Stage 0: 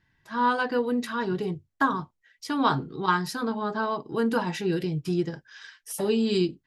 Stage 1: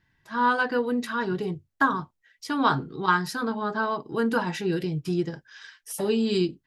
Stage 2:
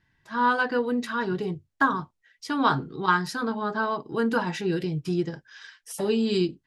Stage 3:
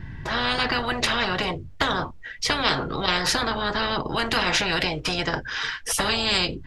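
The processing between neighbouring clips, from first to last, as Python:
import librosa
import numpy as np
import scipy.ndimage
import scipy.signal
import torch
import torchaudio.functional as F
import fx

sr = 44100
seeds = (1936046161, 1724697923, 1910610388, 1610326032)

y1 = fx.dynamic_eq(x, sr, hz=1500.0, q=2.4, threshold_db=-40.0, ratio=4.0, max_db=4)
y2 = scipy.signal.sosfilt(scipy.signal.butter(2, 10000.0, 'lowpass', fs=sr, output='sos'), y1)
y3 = fx.riaa(y2, sr, side='playback')
y3 = fx.spectral_comp(y3, sr, ratio=10.0)
y3 = y3 * librosa.db_to_amplitude(2.0)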